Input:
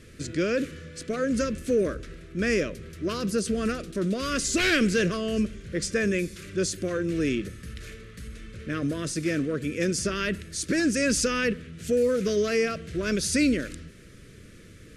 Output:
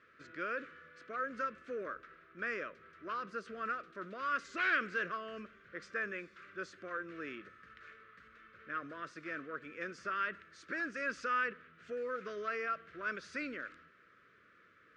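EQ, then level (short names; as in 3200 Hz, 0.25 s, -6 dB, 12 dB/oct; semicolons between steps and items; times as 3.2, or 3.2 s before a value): band-pass 1300 Hz, Q 3.1; air absorption 100 m; +1.0 dB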